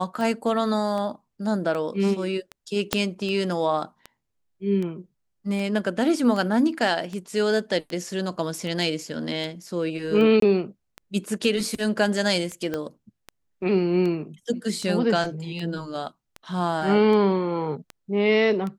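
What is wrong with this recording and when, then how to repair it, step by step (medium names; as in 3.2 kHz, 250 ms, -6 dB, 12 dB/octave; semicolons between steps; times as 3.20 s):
tick 78 rpm
2.93 s: pop -5 dBFS
10.40–10.42 s: dropout 23 ms
12.74 s: pop -15 dBFS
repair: de-click; interpolate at 10.40 s, 23 ms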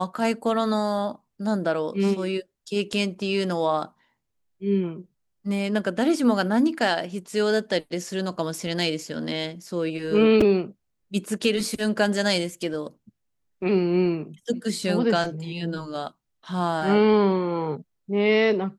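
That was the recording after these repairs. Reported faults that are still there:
2.93 s: pop
12.74 s: pop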